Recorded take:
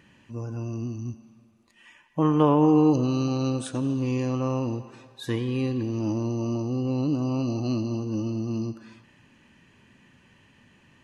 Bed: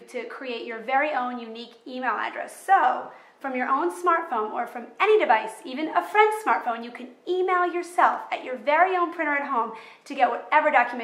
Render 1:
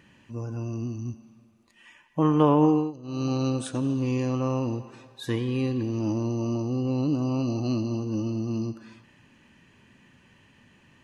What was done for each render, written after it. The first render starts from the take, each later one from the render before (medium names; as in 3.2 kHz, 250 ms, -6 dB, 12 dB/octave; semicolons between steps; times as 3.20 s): 2.65–3.30 s: dip -20.5 dB, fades 0.27 s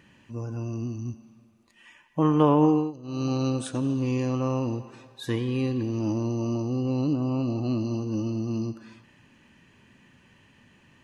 7.13–7.81 s: distance through air 150 m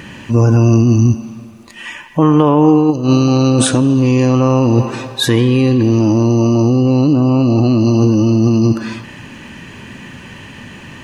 in parallel at +3 dB: compressor with a negative ratio -32 dBFS, ratio -0.5; on the sum: loudness maximiser +12 dB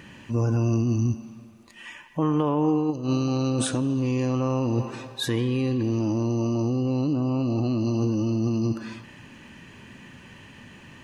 trim -13 dB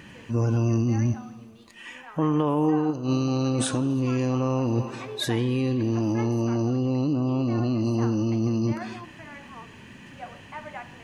add bed -20 dB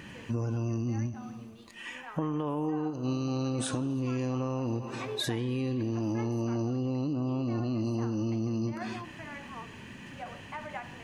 compression, threshold -28 dBFS, peak gain reduction 9.5 dB; endings held to a fixed fall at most 120 dB/s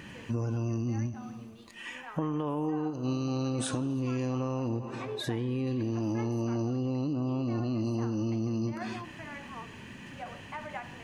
4.68–5.67 s: treble shelf 2.4 kHz -7.5 dB